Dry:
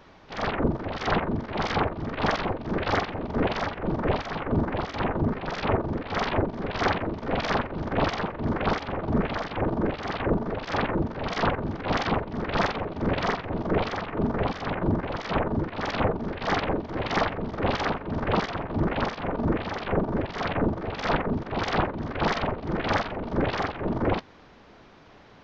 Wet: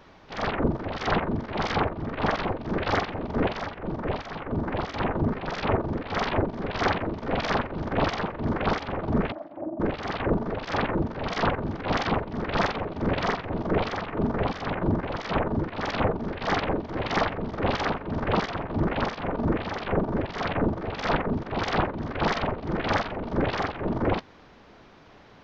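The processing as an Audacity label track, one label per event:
1.910000	2.390000	high shelf 4300 Hz -9 dB
3.500000	4.650000	gain -4 dB
9.320000	9.800000	double band-pass 440 Hz, apart 0.93 oct

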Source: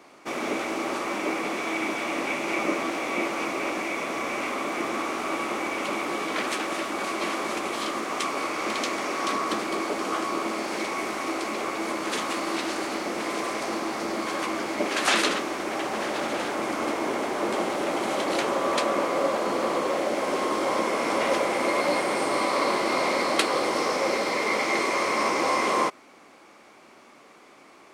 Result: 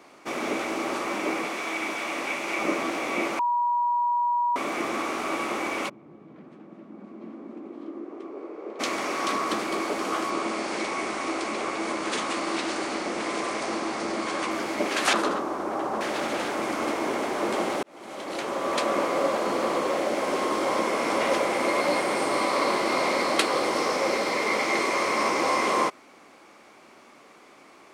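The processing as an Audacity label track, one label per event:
1.450000	2.610000	low shelf 480 Hz -7 dB
3.390000	4.560000	bleep 962 Hz -21 dBFS
5.880000	8.790000	band-pass 120 Hz -> 450 Hz, Q 3.3
10.300000	14.510000	steep low-pass 10000 Hz 72 dB/oct
15.130000	16.010000	resonant high shelf 1600 Hz -9.5 dB, Q 1.5
17.830000	18.940000	fade in linear

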